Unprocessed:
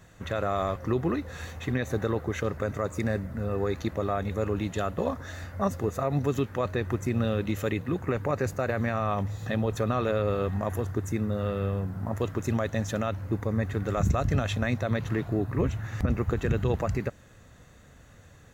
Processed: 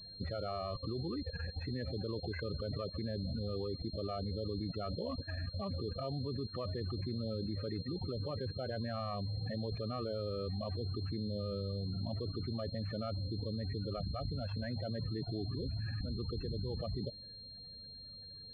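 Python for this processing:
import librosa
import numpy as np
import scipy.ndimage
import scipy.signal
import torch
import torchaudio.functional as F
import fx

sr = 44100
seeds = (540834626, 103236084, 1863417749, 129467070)

y = fx.level_steps(x, sr, step_db=20)
y = fx.spec_topn(y, sr, count=16)
y = fx.pwm(y, sr, carrier_hz=4200.0)
y = F.gain(torch.from_numpy(y), 2.5).numpy()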